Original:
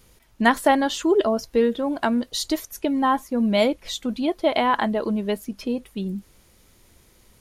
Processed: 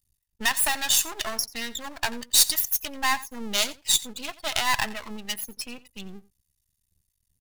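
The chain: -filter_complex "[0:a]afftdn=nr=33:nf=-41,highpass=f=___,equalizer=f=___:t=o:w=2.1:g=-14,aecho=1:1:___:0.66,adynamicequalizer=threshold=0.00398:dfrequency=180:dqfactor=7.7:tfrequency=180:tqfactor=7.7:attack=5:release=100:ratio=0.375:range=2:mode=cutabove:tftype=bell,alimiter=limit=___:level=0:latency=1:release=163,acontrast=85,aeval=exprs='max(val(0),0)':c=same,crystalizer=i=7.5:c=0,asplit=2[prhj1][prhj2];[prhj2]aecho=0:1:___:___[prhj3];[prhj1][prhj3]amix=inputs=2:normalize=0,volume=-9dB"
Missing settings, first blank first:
88, 360, 1.1, -11.5dB, 88, 0.112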